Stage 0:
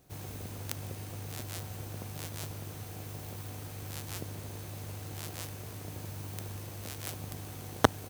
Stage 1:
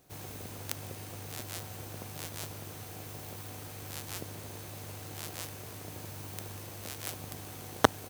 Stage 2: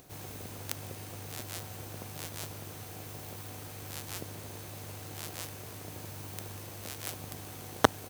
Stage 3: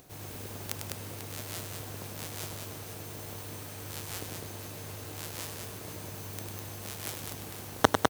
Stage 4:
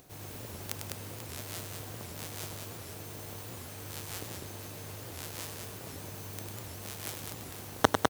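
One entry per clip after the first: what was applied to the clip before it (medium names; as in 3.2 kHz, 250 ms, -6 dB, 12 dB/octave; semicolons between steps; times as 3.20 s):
bass shelf 210 Hz -7 dB; trim +1.5 dB
upward compressor, threshold -49 dBFS
multi-tap echo 99/203/493 ms -6.5/-4/-12 dB
warped record 78 rpm, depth 250 cents; trim -1.5 dB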